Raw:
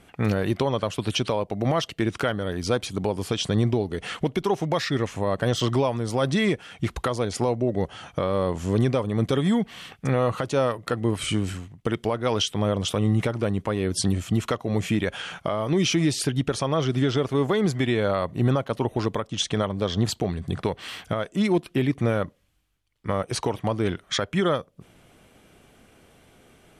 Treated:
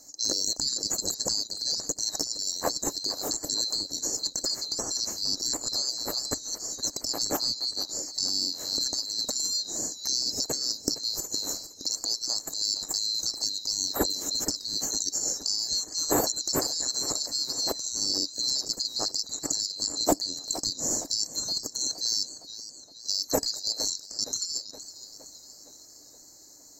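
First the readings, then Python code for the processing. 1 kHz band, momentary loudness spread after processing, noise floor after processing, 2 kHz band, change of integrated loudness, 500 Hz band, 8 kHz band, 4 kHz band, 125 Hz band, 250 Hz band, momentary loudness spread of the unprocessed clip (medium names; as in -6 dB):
-9.5 dB, 5 LU, -51 dBFS, -15.0 dB, -2.0 dB, -13.0 dB, +11.0 dB, +6.0 dB, -23.5 dB, -14.0 dB, 6 LU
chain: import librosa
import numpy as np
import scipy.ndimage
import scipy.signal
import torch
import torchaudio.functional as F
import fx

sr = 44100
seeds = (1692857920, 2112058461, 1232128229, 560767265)

y = fx.band_swap(x, sr, width_hz=4000)
y = fx.high_shelf_res(y, sr, hz=4800.0, db=13.5, q=3.0)
y = fx.small_body(y, sr, hz=(290.0, 1700.0), ring_ms=45, db=8)
y = fx.over_compress(y, sr, threshold_db=-17.0, ratio=-0.5)
y = fx.curve_eq(y, sr, hz=(180.0, 590.0, 2800.0), db=(0, 7, -17))
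y = fx.echo_warbled(y, sr, ms=466, feedback_pct=57, rate_hz=2.8, cents=105, wet_db=-14.0)
y = F.gain(torch.from_numpy(y), 5.0).numpy()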